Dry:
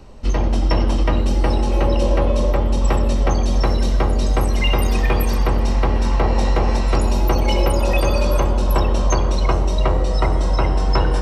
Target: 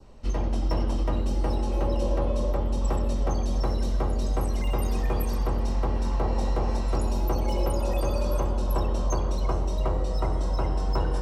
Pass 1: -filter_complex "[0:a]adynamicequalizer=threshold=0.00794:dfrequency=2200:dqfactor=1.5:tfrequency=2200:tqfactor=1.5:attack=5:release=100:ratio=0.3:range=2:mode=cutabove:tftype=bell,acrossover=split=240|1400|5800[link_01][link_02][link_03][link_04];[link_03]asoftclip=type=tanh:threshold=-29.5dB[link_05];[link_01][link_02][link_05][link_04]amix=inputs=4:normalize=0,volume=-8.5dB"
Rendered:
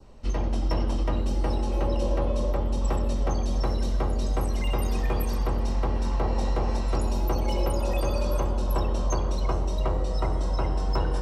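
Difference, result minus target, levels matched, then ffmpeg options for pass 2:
soft clipping: distortion −5 dB
-filter_complex "[0:a]adynamicequalizer=threshold=0.00794:dfrequency=2200:dqfactor=1.5:tfrequency=2200:tqfactor=1.5:attack=5:release=100:ratio=0.3:range=2:mode=cutabove:tftype=bell,acrossover=split=240|1400|5800[link_01][link_02][link_03][link_04];[link_03]asoftclip=type=tanh:threshold=-36.5dB[link_05];[link_01][link_02][link_05][link_04]amix=inputs=4:normalize=0,volume=-8.5dB"

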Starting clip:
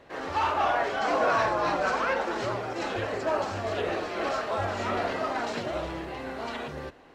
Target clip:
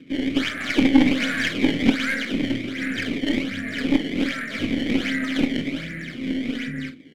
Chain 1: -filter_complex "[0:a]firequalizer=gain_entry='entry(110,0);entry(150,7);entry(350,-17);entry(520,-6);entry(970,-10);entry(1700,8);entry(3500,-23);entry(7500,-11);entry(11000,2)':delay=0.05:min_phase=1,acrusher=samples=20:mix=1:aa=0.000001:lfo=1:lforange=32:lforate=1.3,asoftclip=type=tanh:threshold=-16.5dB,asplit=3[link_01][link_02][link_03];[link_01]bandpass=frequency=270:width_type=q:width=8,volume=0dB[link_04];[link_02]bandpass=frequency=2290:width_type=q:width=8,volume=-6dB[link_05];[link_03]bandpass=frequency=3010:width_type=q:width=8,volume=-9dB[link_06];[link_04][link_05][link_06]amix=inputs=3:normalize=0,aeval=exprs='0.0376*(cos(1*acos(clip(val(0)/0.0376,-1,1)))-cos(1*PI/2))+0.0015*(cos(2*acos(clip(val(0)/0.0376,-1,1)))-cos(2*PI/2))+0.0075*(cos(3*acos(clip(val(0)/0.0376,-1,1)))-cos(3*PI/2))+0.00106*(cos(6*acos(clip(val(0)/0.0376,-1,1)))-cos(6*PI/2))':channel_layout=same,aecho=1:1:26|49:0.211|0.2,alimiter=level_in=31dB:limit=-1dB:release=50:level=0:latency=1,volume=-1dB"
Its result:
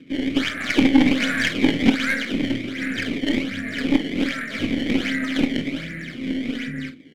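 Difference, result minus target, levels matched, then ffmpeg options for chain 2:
soft clipping: distortion −10 dB
-filter_complex "[0:a]firequalizer=gain_entry='entry(110,0);entry(150,7);entry(350,-17);entry(520,-6);entry(970,-10);entry(1700,8);entry(3500,-23);entry(7500,-11);entry(11000,2)':delay=0.05:min_phase=1,acrusher=samples=20:mix=1:aa=0.000001:lfo=1:lforange=32:lforate=1.3,asoftclip=type=tanh:threshold=-23dB,asplit=3[link_01][link_02][link_03];[link_01]bandpass=frequency=270:width_type=q:width=8,volume=0dB[link_04];[link_02]bandpass=frequency=2290:width_type=q:width=8,volume=-6dB[link_05];[link_03]bandpass=frequency=3010:width_type=q:width=8,volume=-9dB[link_06];[link_04][link_05][link_06]amix=inputs=3:normalize=0,aeval=exprs='0.0376*(cos(1*acos(clip(val(0)/0.0376,-1,1)))-cos(1*PI/2))+0.0015*(cos(2*acos(clip(val(0)/0.0376,-1,1)))-cos(2*PI/2))+0.0075*(cos(3*acos(clip(val(0)/0.0376,-1,1)))-cos(3*PI/2))+0.00106*(cos(6*acos(clip(val(0)/0.0376,-1,1)))-cos(6*PI/2))':channel_layout=same,aecho=1:1:26|49:0.211|0.2,alimiter=level_in=31dB:limit=-1dB:release=50:level=0:latency=1,volume=-1dB"

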